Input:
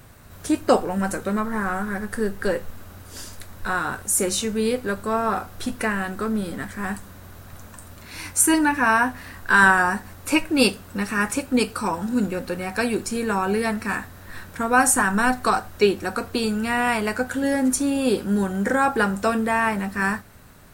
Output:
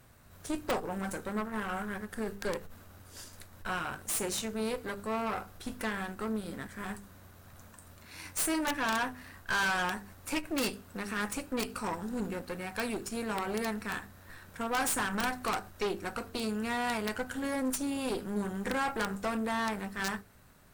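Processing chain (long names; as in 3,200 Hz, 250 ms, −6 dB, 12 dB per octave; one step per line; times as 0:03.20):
tube saturation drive 21 dB, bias 0.8
mains-hum notches 50/100/150/200/250/300/350/400/450 Hz
wrap-around overflow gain 17.5 dB
level −5.5 dB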